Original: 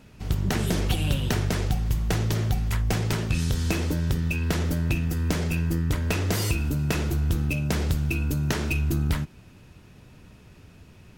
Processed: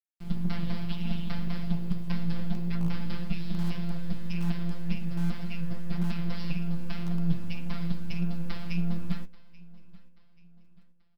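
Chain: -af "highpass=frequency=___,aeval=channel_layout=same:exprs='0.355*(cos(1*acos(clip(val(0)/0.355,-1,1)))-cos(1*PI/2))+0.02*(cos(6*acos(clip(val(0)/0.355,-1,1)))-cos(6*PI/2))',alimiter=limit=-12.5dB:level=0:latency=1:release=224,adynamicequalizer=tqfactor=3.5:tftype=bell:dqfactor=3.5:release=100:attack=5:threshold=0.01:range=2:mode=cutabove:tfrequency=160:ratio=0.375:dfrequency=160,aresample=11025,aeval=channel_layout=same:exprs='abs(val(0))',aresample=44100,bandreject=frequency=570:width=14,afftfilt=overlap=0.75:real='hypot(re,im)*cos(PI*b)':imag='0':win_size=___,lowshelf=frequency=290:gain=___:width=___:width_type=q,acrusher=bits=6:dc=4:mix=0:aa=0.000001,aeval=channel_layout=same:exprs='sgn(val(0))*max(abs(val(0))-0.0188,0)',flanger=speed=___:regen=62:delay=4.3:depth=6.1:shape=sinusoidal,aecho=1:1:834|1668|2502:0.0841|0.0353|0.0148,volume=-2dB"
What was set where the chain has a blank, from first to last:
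77, 1024, 8.5, 3, 1.8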